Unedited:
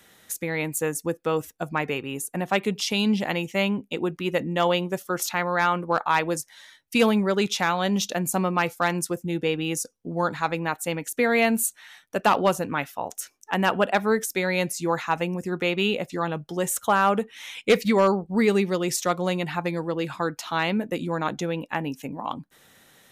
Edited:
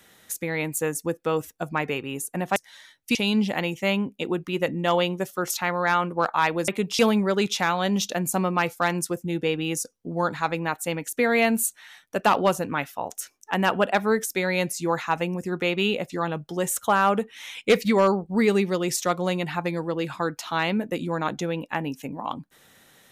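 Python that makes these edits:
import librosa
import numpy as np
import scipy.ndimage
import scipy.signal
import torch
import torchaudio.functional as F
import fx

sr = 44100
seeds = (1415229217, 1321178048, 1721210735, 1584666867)

y = fx.edit(x, sr, fx.swap(start_s=2.56, length_s=0.31, other_s=6.4, other_length_s=0.59), tone=tone)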